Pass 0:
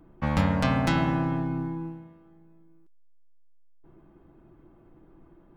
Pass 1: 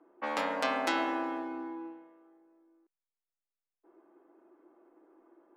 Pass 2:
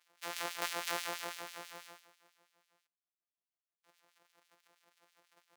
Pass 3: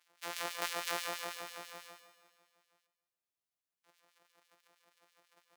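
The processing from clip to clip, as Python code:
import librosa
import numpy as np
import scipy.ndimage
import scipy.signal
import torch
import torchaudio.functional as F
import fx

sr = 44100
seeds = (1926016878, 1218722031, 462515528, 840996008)

y1 = scipy.signal.sosfilt(scipy.signal.cheby2(4, 40, 160.0, 'highpass', fs=sr, output='sos'), x)
y1 = fx.env_lowpass(y1, sr, base_hz=1700.0, full_db=-28.5)
y1 = F.gain(torch.from_numpy(y1), -2.0).numpy()
y2 = np.r_[np.sort(y1[:len(y1) // 256 * 256].reshape(-1, 256), axis=1).ravel(), y1[len(y1) // 256 * 256:]]
y2 = fx.filter_lfo_highpass(y2, sr, shape='sine', hz=6.1, low_hz=550.0, high_hz=3100.0, q=0.88)
y2 = F.gain(torch.from_numpy(y2), -1.5).numpy()
y3 = fx.echo_feedback(y2, sr, ms=141, feedback_pct=46, wet_db=-12.5)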